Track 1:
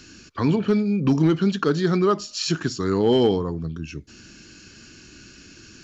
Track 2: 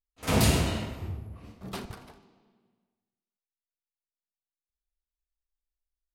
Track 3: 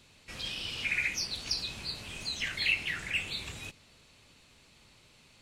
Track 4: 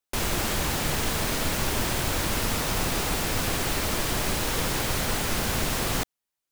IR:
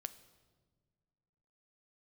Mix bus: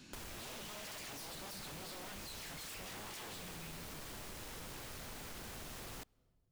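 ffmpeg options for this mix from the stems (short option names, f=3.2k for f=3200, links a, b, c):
-filter_complex "[0:a]equalizer=f=200:w=1.6:g=11.5,alimiter=limit=-6.5dB:level=0:latency=1:release=464,volume=-15.5dB[a];[2:a]volume=-1.5dB[b];[3:a]volume=-11dB,asplit=2[c][d];[d]volume=-17dB[e];[4:a]atrim=start_sample=2205[f];[e][f]afir=irnorm=-1:irlink=0[g];[a][b][c][g]amix=inputs=4:normalize=0,aeval=exprs='0.0224*(abs(mod(val(0)/0.0224+3,4)-2)-1)':c=same,acompressor=threshold=-47dB:ratio=5"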